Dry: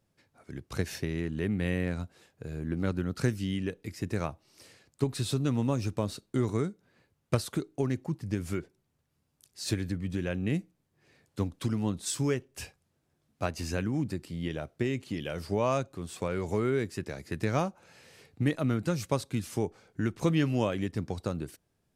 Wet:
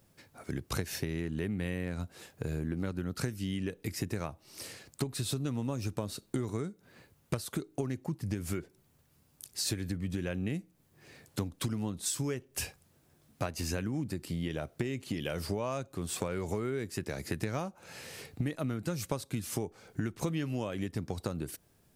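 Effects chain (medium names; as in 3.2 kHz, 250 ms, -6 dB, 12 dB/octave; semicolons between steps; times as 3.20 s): treble shelf 11 kHz +11.5 dB; compression 6:1, threshold -40 dBFS, peak gain reduction 18.5 dB; trim +8.5 dB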